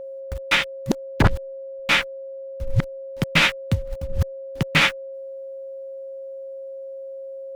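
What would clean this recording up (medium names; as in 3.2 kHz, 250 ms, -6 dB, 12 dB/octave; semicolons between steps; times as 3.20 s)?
band-stop 540 Hz, Q 30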